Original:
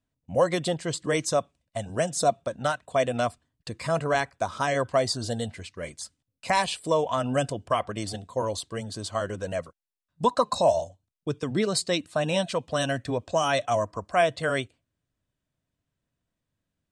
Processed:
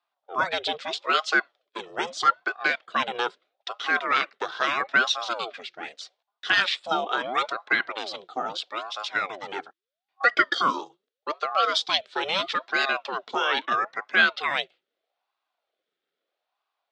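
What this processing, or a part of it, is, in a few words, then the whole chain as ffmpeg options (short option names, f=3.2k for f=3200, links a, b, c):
voice changer toy: -filter_complex "[0:a]aeval=exprs='val(0)*sin(2*PI*600*n/s+600*0.6/0.78*sin(2*PI*0.78*n/s))':c=same,highpass=600,equalizer=f=930:t=q:w=4:g=-10,equalizer=f=1.4k:t=q:w=4:g=3,equalizer=f=3.5k:t=q:w=4:g=6,lowpass=f=4.8k:w=0.5412,lowpass=f=4.8k:w=1.3066,asettb=1/sr,asplit=3[a][b][c];[a]atrim=end=13.364[d];[b]atrim=start=13.36:end=13.86,asetpts=PTS-STARTPTS,afade=t=in:d=0.004:c=qsin,afade=t=out:st=0.496:d=0.004:c=qsin,bass=f=250:g=-1,treble=f=4k:g=-7[e];[c]atrim=start=13.856[f];[d][e]acrossfade=d=0.004:c1=hsin:c2=qsin[g];[g][f]acrossfade=d=0.004:c1=qsin:c2=hsin,volume=6.5dB"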